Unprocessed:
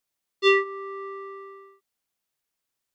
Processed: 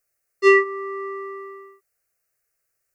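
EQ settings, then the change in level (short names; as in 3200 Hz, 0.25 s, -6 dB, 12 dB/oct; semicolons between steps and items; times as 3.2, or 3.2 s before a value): fixed phaser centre 930 Hz, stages 6; +8.5 dB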